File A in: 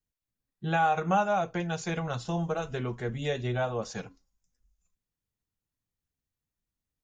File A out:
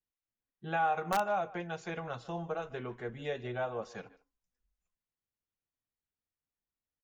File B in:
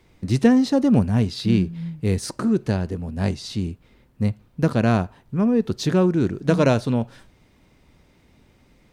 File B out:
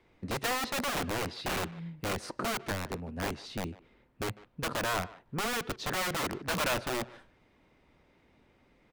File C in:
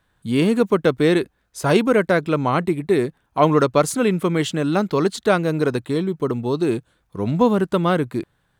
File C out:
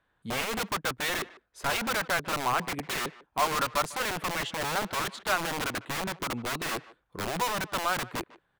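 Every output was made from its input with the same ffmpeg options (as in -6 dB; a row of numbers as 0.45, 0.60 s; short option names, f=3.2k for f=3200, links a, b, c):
-filter_complex "[0:a]bass=f=250:g=-8,treble=f=4k:g=-12,acrossover=split=740[a][b];[a]aeval=exprs='(mod(14.1*val(0)+1,2)-1)/14.1':c=same[c];[c][b]amix=inputs=2:normalize=0,asplit=2[d][e];[e]adelay=150,highpass=300,lowpass=3.4k,asoftclip=type=hard:threshold=-16.5dB,volume=-19dB[f];[d][f]amix=inputs=2:normalize=0,volume=-4.5dB"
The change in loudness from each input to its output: -5.5, -12.5, -10.5 LU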